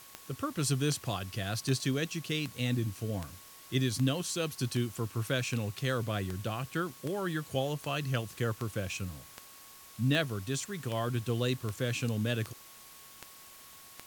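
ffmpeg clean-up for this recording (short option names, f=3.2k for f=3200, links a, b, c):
-af "adeclick=t=4,bandreject=f=1.1k:w=30,afwtdn=0.0025"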